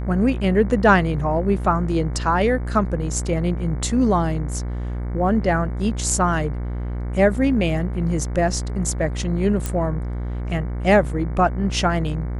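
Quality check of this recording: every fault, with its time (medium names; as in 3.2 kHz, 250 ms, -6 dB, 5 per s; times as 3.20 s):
buzz 60 Hz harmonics 38 -26 dBFS
9.66 s: pop -10 dBFS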